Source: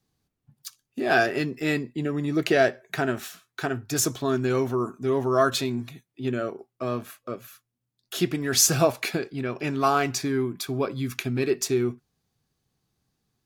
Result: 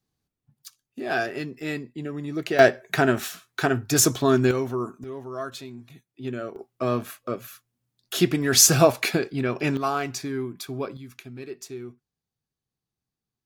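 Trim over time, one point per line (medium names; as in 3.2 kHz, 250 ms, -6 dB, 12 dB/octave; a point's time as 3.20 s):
-5 dB
from 2.59 s +5.5 dB
from 4.51 s -2 dB
from 5.04 s -12 dB
from 5.90 s -4 dB
from 6.56 s +4 dB
from 9.77 s -4 dB
from 10.97 s -13 dB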